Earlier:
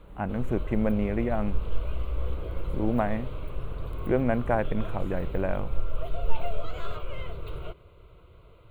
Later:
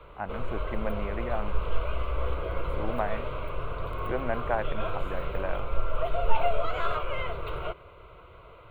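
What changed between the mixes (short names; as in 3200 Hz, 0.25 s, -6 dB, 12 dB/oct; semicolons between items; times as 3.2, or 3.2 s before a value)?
background +11.5 dB; master: add three-band isolator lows -12 dB, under 560 Hz, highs -13 dB, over 2700 Hz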